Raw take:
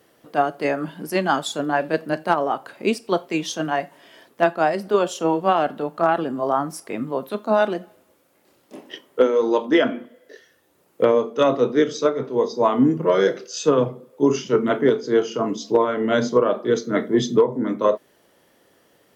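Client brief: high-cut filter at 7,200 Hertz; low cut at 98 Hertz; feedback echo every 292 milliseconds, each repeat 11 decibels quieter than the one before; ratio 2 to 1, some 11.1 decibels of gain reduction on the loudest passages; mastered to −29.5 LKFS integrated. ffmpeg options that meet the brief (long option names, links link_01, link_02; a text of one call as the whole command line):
ffmpeg -i in.wav -af "highpass=98,lowpass=7200,acompressor=threshold=-33dB:ratio=2,aecho=1:1:292|584|876:0.282|0.0789|0.0221,volume=1dB" out.wav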